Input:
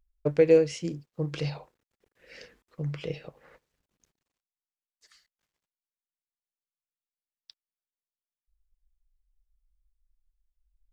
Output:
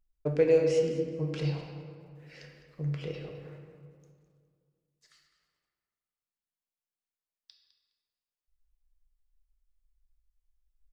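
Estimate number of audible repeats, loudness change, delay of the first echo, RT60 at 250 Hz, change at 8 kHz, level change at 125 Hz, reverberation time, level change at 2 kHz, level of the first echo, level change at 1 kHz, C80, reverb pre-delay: 1, -2.0 dB, 0.207 s, 2.7 s, n/a, +0.5 dB, 2.1 s, -2.5 dB, -13.0 dB, -1.5 dB, 5.0 dB, 3 ms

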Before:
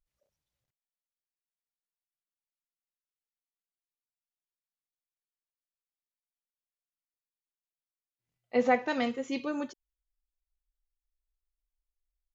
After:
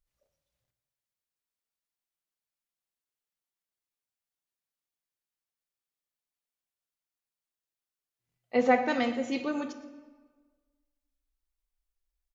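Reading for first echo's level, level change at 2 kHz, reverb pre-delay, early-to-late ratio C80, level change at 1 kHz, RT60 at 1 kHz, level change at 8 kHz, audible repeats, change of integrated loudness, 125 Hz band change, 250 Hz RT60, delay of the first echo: -18.0 dB, +2.0 dB, 8 ms, 12.0 dB, +2.5 dB, 1.4 s, n/a, 1, +2.0 dB, n/a, 1.4 s, 0.118 s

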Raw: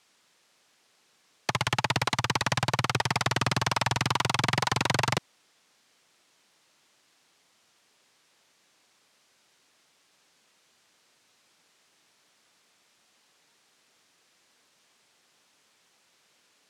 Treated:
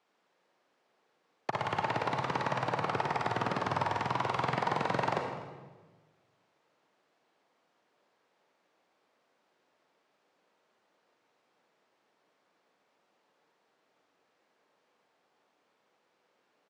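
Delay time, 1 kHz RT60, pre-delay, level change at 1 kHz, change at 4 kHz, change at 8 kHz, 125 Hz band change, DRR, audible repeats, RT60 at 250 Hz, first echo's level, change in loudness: 0.249 s, 1.2 s, 37 ms, -2.0 dB, -14.0 dB, -19.5 dB, -8.5 dB, 2.5 dB, 1, 1.6 s, -18.0 dB, -5.5 dB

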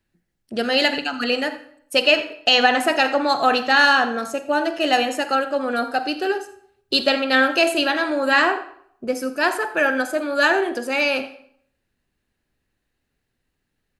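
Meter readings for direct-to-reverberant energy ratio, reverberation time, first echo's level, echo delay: 11.0 dB, 0.65 s, -17.5 dB, 84 ms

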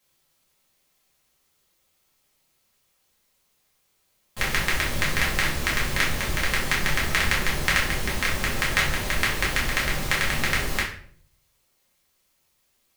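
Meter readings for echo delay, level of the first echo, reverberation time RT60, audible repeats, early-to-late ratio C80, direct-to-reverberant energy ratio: none, none, 0.55 s, none, 10.0 dB, -6.5 dB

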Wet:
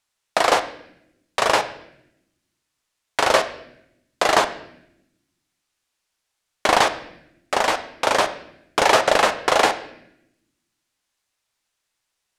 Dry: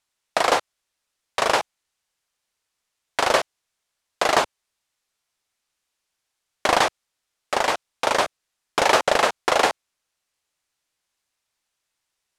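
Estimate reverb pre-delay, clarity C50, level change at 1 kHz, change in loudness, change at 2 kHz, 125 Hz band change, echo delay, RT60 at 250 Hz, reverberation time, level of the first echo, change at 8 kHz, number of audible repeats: 9 ms, 12.5 dB, +2.0 dB, +2.0 dB, +2.0 dB, +2.5 dB, none, 1.3 s, 0.80 s, none, +1.5 dB, none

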